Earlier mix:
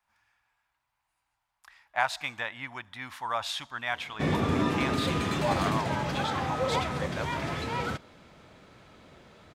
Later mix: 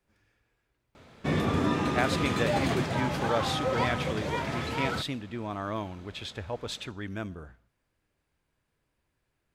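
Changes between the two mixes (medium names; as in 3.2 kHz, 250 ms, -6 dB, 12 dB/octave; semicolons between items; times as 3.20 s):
speech: add resonant low shelf 610 Hz +12.5 dB, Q 3; background: entry -2.95 s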